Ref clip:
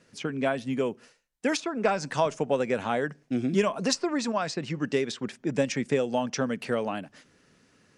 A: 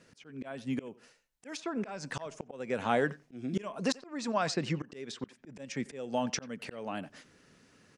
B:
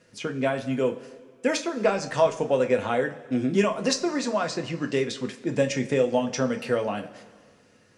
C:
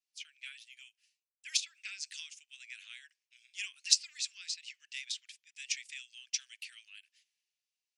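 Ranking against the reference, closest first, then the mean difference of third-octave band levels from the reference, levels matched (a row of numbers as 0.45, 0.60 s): B, A, C; 3.0, 5.5, 19.0 dB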